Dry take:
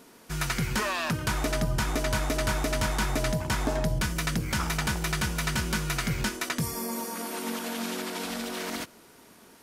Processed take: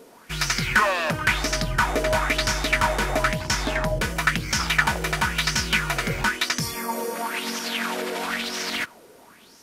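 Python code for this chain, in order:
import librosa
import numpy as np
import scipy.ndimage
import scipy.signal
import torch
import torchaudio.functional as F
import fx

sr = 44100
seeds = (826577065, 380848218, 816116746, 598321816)

y = fx.dynamic_eq(x, sr, hz=2000.0, q=0.8, threshold_db=-45.0, ratio=4.0, max_db=6)
y = fx.bell_lfo(y, sr, hz=0.99, low_hz=470.0, high_hz=5800.0, db=13)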